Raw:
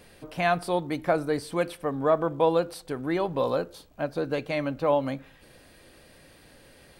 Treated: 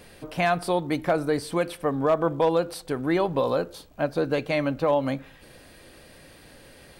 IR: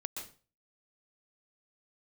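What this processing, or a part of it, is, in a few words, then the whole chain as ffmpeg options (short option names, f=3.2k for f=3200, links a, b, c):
clipper into limiter: -af "asoftclip=type=hard:threshold=-14dB,alimiter=limit=-17.5dB:level=0:latency=1:release=146,volume=4dB"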